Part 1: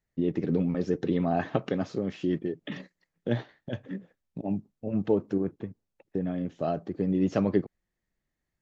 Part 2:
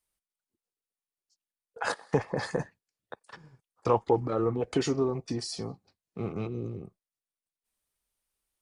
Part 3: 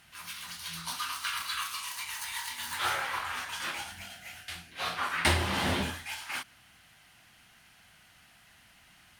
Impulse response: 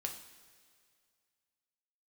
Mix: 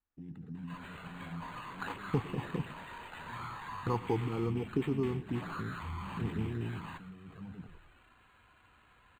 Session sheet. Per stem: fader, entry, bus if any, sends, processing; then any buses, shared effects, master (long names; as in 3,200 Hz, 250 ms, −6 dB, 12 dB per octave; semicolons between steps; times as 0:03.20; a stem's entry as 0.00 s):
−10.0 dB, 0.00 s, send −10.5 dB, echo send −8 dB, brickwall limiter −21.5 dBFS, peak gain reduction 10 dB; level that may fall only so fast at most 82 dB per second; automatic ducking −11 dB, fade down 1.55 s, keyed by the second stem
−0.5 dB, 0.00 s, send −20.5 dB, echo send −18 dB, high-shelf EQ 7,600 Hz −11 dB; pitch vibrato 2.1 Hz 32 cents
+1.5 dB, 0.55 s, send −3.5 dB, echo send −14 dB, thirty-one-band graphic EQ 160 Hz +8 dB, 1,000 Hz +5 dB, 4,000 Hz −4 dB; tube saturation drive 41 dB, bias 0.4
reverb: on, pre-delay 3 ms
echo: single-tap delay 110 ms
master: phaser with its sweep stopped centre 2,200 Hz, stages 6; flanger swept by the level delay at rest 3.4 ms, full sweep at −29.5 dBFS; linearly interpolated sample-rate reduction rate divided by 8×